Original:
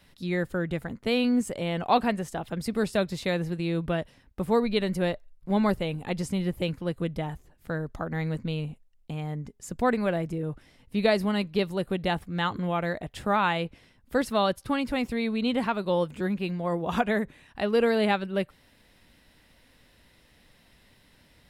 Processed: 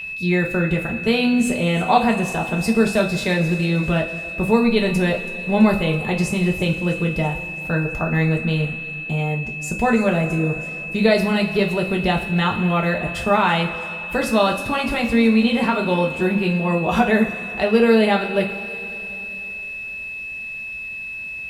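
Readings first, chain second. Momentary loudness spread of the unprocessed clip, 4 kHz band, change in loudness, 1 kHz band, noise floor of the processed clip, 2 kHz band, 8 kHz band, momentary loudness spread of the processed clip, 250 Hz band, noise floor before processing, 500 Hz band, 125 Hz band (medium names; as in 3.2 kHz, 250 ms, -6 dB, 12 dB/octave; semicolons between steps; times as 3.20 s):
10 LU, +7.5 dB, +8.5 dB, +7.5 dB, -31 dBFS, +12.0 dB, +10.0 dB, 11 LU, +9.0 dB, -61 dBFS, +7.5 dB, +10.0 dB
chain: in parallel at +3 dB: peak limiter -20 dBFS, peak gain reduction 9.5 dB; on the sum: whistle 2.6 kHz -26 dBFS; feedback echo behind a high-pass 329 ms, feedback 69%, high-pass 5.4 kHz, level -14.5 dB; two-slope reverb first 0.29 s, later 3.3 s, from -18 dB, DRR 0 dB; trim -1 dB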